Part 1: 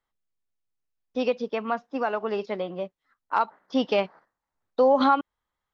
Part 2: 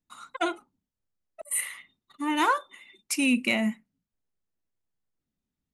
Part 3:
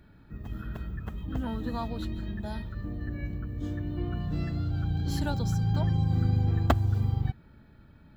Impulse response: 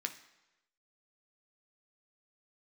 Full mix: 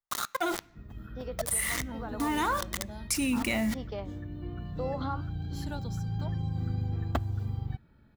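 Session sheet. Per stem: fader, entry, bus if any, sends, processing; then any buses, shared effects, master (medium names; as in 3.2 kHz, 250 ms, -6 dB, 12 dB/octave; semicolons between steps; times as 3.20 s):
-10.0 dB, 0.00 s, bus A, no send, flange 1.1 Hz, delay 7.6 ms, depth 8.9 ms, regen +77%
-3.5 dB, 0.00 s, bus A, send -16.5 dB, bit crusher 7-bit; level flattener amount 70%
-6.5 dB, 0.45 s, no bus, no send, none
bus A: 0.0 dB, peaking EQ 2.6 kHz -11.5 dB 0.33 oct; compression 2:1, threshold -30 dBFS, peak gain reduction 5 dB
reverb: on, RT60 1.0 s, pre-delay 7 ms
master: none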